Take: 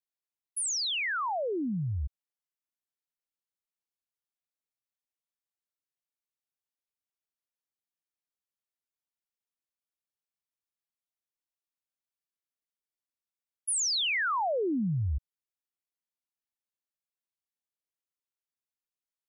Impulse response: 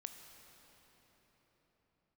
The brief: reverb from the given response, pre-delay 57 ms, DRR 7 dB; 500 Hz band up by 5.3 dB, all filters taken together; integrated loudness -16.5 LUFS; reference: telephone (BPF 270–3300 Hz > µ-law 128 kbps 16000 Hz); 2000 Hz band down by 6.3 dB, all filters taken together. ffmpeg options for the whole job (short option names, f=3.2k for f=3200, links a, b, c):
-filter_complex "[0:a]equalizer=f=500:t=o:g=7.5,equalizer=f=2k:t=o:g=-8,asplit=2[a][b];[1:a]atrim=start_sample=2205,adelay=57[c];[b][c]afir=irnorm=-1:irlink=0,volume=-3dB[d];[a][d]amix=inputs=2:normalize=0,highpass=270,lowpass=3.3k,volume=14dB" -ar 16000 -c:a pcm_mulaw